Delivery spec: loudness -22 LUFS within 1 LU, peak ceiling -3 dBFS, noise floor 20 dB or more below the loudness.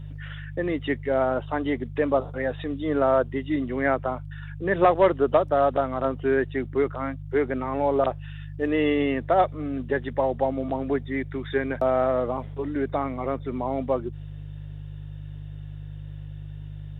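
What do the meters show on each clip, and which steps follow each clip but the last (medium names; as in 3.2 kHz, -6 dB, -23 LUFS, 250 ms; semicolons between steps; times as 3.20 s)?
hum 50 Hz; highest harmonic 150 Hz; hum level -35 dBFS; loudness -25.5 LUFS; peak level -9.0 dBFS; loudness target -22.0 LUFS
-> de-hum 50 Hz, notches 3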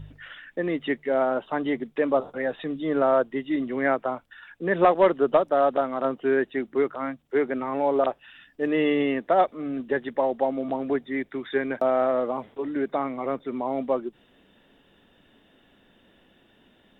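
hum not found; loudness -25.5 LUFS; peak level -9.5 dBFS; loudness target -22.0 LUFS
-> trim +3.5 dB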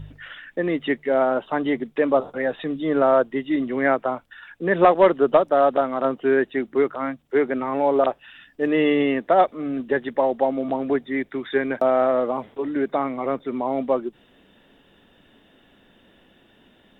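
loudness -22.0 LUFS; peak level -6.0 dBFS; noise floor -57 dBFS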